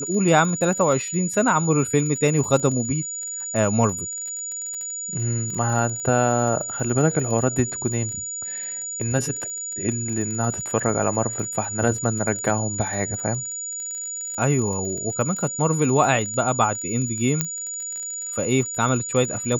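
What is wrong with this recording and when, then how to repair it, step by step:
crackle 29/s -29 dBFS
tone 6900 Hz -28 dBFS
17.41 pop -4 dBFS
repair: de-click; notch 6900 Hz, Q 30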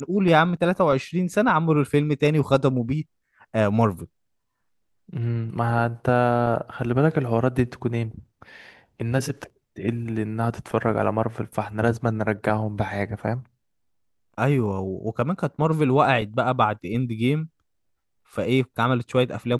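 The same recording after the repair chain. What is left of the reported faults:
none

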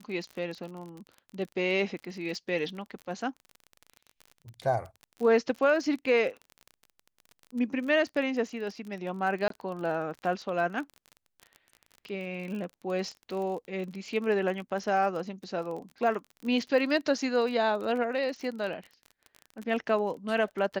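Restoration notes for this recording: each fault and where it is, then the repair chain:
crackle 32/s -36 dBFS
9.48–9.5 gap 23 ms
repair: de-click; interpolate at 9.48, 23 ms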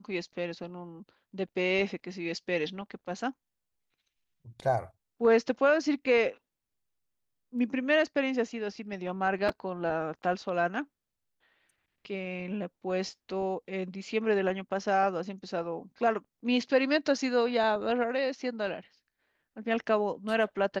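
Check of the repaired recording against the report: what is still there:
none

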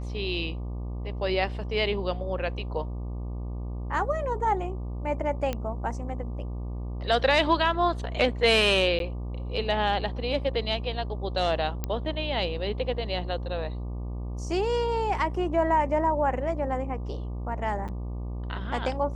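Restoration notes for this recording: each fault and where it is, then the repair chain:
buzz 60 Hz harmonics 20 -33 dBFS
5.53 pop -16 dBFS
8.99–9 gap 12 ms
11.84 pop -15 dBFS
17.88–17.89 gap 7.1 ms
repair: de-click; de-hum 60 Hz, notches 20; interpolate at 8.99, 12 ms; interpolate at 17.88, 7.1 ms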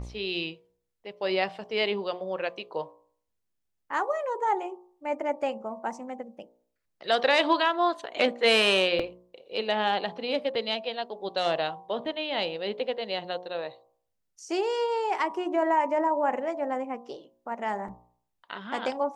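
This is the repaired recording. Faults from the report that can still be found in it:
none

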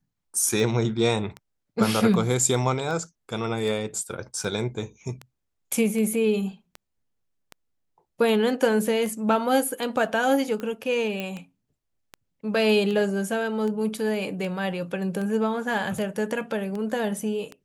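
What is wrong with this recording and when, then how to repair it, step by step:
tick 78 rpm
11.2 pop -16 dBFS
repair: de-click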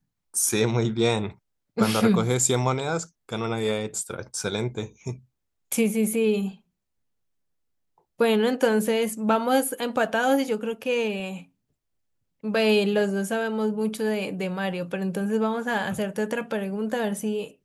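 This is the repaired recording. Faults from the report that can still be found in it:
none

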